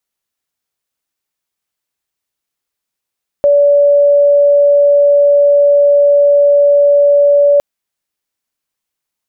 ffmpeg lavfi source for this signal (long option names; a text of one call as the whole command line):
ffmpeg -f lavfi -i "aevalsrc='0.562*sin(2*PI*574*t)':duration=4.16:sample_rate=44100" out.wav